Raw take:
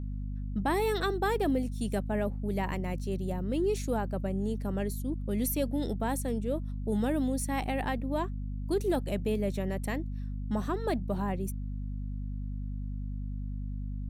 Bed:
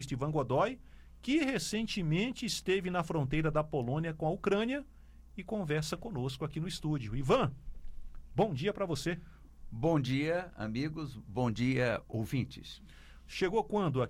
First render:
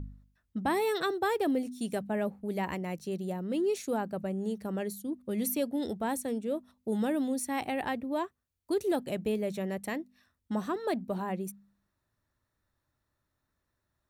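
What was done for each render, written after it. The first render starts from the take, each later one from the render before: de-hum 50 Hz, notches 5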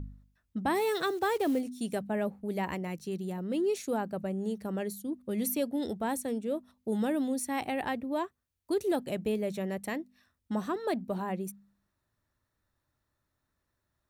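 0.75–1.61 block floating point 5-bit; 2.87–3.38 bell 620 Hz -14.5 dB 0.3 oct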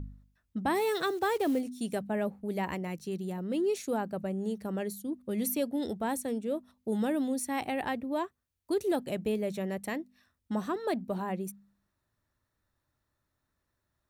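nothing audible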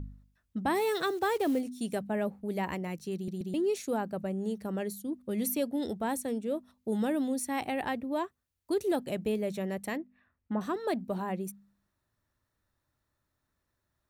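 3.15 stutter in place 0.13 s, 3 plays; 9.97–10.61 LPF 2500 Hz 24 dB/oct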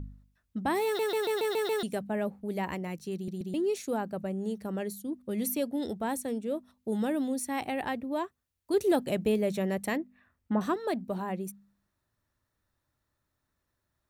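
0.85 stutter in place 0.14 s, 7 plays; 8.74–10.74 gain +4 dB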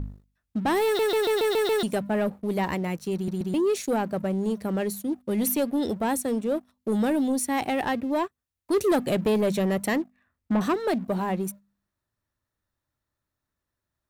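sample leveller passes 2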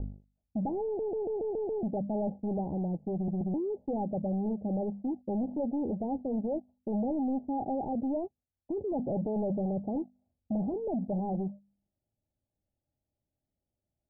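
overloaded stage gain 28 dB; rippled Chebyshev low-pass 840 Hz, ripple 3 dB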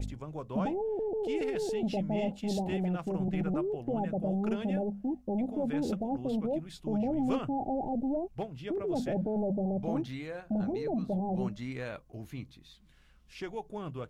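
add bed -8 dB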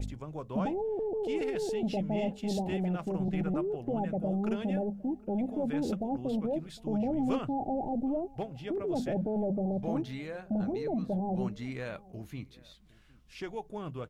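outdoor echo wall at 130 m, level -23 dB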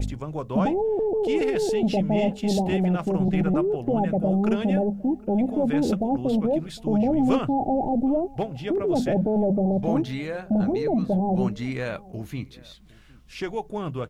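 gain +9 dB

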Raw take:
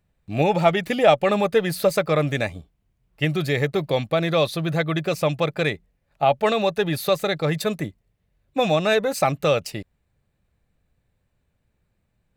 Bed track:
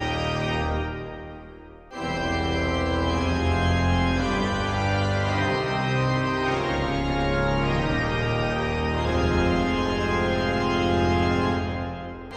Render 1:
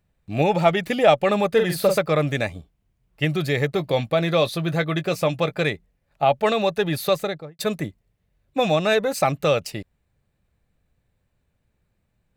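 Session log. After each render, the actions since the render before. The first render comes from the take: 1.51–1.98 doubler 45 ms -5.5 dB; 3.74–5.64 doubler 17 ms -12 dB; 7.13–7.59 studio fade out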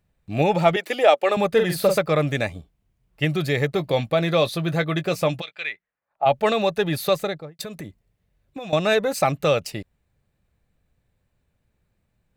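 0.76–1.37 HPF 330 Hz 24 dB/oct; 5.4–6.25 band-pass 4000 Hz -> 760 Hz, Q 2.2; 7.61–8.73 compressor 12:1, threshold -30 dBFS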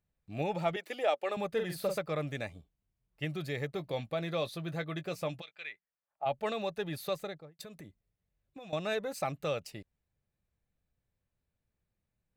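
gain -14 dB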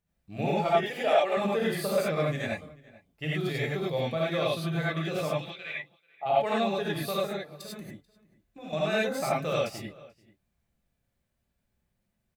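outdoor echo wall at 75 m, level -21 dB; non-linear reverb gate 0.12 s rising, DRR -6 dB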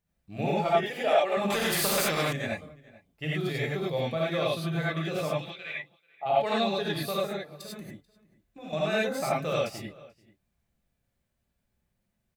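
1.5–2.33 spectral compressor 2:1; 6.41–7.03 bell 4200 Hz +9.5 dB 0.44 oct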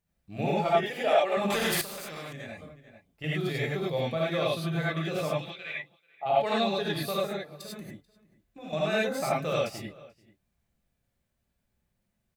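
1.81–3.24 compressor, threshold -37 dBFS

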